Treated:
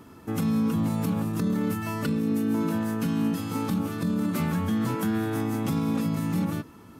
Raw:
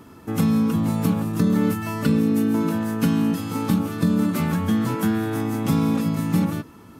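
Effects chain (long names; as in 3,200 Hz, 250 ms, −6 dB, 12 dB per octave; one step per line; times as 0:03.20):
brickwall limiter −15 dBFS, peak gain reduction 7.5 dB
level −3 dB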